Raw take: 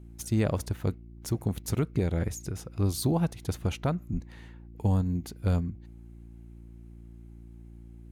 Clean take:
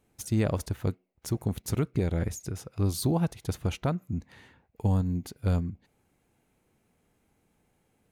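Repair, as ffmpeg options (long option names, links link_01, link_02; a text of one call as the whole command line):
ffmpeg -i in.wav -filter_complex "[0:a]bandreject=frequency=57.4:width_type=h:width=4,bandreject=frequency=114.8:width_type=h:width=4,bandreject=frequency=172.2:width_type=h:width=4,bandreject=frequency=229.6:width_type=h:width=4,bandreject=frequency=287:width_type=h:width=4,bandreject=frequency=344.4:width_type=h:width=4,asplit=3[link_01][link_02][link_03];[link_01]afade=type=out:start_time=4.12:duration=0.02[link_04];[link_02]highpass=frequency=140:width=0.5412,highpass=frequency=140:width=1.3066,afade=type=in:start_time=4.12:duration=0.02,afade=type=out:start_time=4.24:duration=0.02[link_05];[link_03]afade=type=in:start_time=4.24:duration=0.02[link_06];[link_04][link_05][link_06]amix=inputs=3:normalize=0" out.wav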